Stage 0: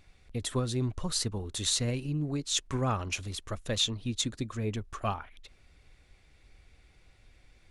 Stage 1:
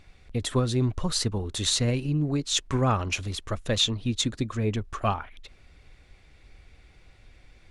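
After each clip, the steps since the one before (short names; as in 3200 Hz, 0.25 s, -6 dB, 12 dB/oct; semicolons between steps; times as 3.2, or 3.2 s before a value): high shelf 7400 Hz -8 dB; gain +6 dB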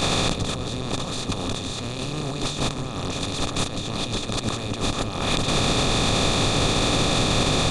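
per-bin compression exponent 0.2; negative-ratio compressor -23 dBFS, ratio -0.5; on a send: dark delay 0.181 s, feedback 78%, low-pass 470 Hz, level -6.5 dB; on the sum: gain -1.5 dB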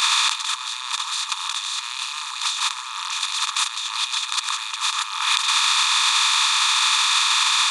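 brick-wall FIR high-pass 860 Hz; reverb RT60 3.5 s, pre-delay 3 ms, DRR 16.5 dB; gain +6.5 dB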